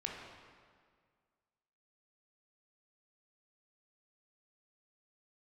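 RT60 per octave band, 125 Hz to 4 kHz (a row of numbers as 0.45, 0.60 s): 2.0, 2.0, 1.9, 1.9, 1.7, 1.4 s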